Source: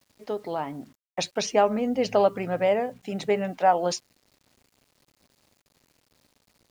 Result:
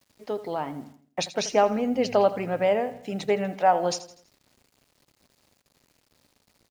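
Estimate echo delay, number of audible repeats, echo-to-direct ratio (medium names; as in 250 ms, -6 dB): 82 ms, 3, -14.0 dB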